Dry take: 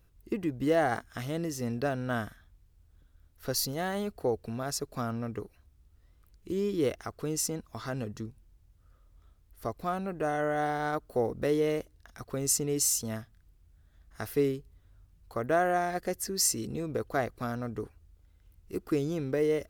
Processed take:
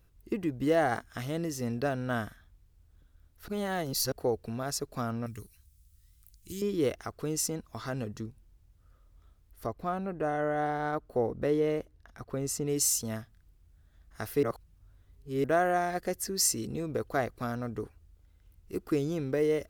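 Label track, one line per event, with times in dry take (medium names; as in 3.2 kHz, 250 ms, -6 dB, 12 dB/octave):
3.480000	4.120000	reverse
5.260000	6.620000	FFT filter 120 Hz 0 dB, 680 Hz -19 dB, 1.3 kHz -8 dB, 8.7 kHz +13 dB
9.660000	12.660000	treble shelf 3.1 kHz -9.5 dB
14.430000	15.440000	reverse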